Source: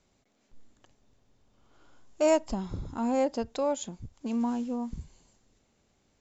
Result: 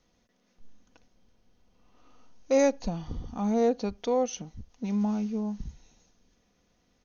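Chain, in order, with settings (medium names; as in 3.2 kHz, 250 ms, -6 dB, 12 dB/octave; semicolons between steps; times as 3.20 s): comb 3.6 ms, depth 34%; tape speed -12%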